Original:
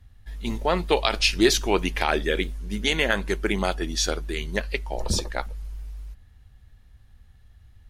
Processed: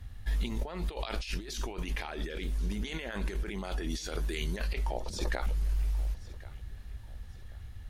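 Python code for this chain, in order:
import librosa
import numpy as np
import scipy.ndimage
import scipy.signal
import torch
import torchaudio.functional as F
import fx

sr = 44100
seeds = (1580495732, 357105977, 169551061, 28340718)

y = fx.high_shelf(x, sr, hz=4300.0, db=5.5, at=(3.9, 4.68))
y = fx.over_compress(y, sr, threshold_db=-34.0, ratio=-1.0)
y = fx.echo_feedback(y, sr, ms=1085, feedback_pct=35, wet_db=-19.5)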